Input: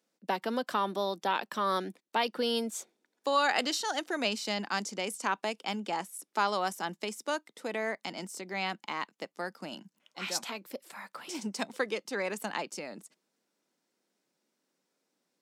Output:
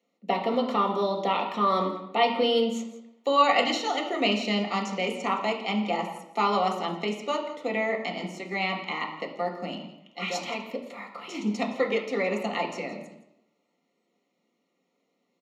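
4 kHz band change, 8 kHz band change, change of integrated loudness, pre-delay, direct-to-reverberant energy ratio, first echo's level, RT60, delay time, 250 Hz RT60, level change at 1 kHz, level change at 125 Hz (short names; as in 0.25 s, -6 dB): +4.0 dB, -4.5 dB, +6.0 dB, 3 ms, 0.0 dB, -16.0 dB, 0.85 s, 0.168 s, 0.80 s, +6.0 dB, +9.0 dB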